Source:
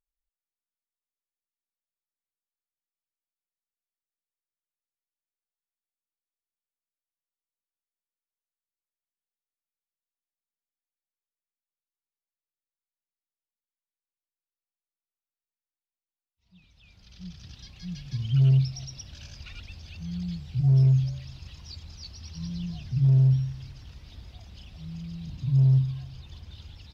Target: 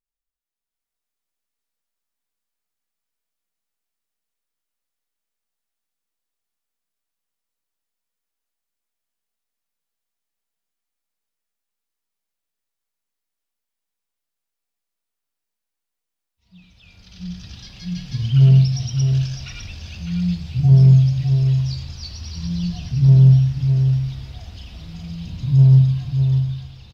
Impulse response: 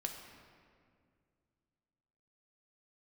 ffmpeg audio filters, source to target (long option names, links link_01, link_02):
-filter_complex "[0:a]dynaudnorm=framelen=130:gausssize=11:maxgain=9.5dB,aecho=1:1:605:0.447[link_01];[1:a]atrim=start_sample=2205,atrim=end_sample=6174[link_02];[link_01][link_02]afir=irnorm=-1:irlink=0"